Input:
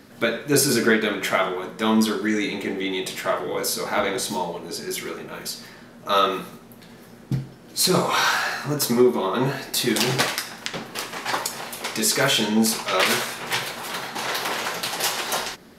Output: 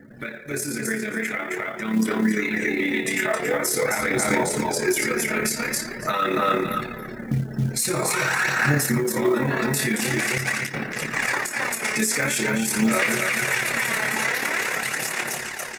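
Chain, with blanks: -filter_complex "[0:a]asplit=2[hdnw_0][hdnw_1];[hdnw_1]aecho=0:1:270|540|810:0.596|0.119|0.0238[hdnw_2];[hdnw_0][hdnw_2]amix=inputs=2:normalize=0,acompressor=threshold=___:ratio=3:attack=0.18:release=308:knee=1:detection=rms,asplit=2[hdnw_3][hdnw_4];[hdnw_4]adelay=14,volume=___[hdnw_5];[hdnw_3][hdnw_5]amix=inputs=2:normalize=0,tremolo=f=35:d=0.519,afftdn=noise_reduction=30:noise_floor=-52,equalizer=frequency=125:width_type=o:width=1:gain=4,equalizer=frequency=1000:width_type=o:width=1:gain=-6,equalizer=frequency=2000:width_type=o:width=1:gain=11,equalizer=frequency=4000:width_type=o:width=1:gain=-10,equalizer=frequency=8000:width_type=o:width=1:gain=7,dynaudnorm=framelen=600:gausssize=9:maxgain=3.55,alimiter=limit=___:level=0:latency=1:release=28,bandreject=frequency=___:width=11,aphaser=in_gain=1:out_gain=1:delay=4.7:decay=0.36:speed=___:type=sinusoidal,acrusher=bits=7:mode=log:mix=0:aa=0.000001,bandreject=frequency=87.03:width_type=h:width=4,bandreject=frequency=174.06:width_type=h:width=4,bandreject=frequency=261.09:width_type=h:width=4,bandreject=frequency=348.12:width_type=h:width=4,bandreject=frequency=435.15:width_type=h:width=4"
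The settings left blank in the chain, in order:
0.0562, 0.355, 0.211, 3100, 0.46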